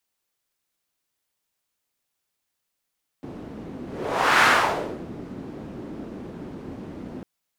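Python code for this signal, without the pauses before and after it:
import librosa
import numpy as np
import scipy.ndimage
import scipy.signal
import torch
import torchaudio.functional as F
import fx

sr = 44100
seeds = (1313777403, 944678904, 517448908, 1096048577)

y = fx.whoosh(sr, seeds[0], length_s=4.0, peak_s=1.2, rise_s=0.64, fall_s=0.67, ends_hz=260.0, peak_hz=1500.0, q=1.6, swell_db=20.0)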